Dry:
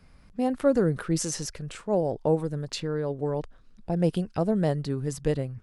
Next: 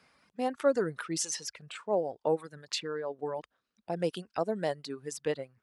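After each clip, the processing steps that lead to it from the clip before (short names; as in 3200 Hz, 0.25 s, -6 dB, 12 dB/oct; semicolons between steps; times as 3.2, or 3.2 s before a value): reverb removal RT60 2 s; weighting filter A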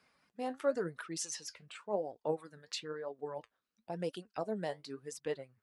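flange 0.96 Hz, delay 2.5 ms, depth 9.6 ms, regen +61%; gain -2 dB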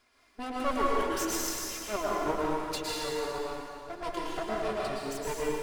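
minimum comb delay 2.9 ms; plate-style reverb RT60 2.2 s, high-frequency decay 1×, pre-delay 0.1 s, DRR -5.5 dB; gain +4 dB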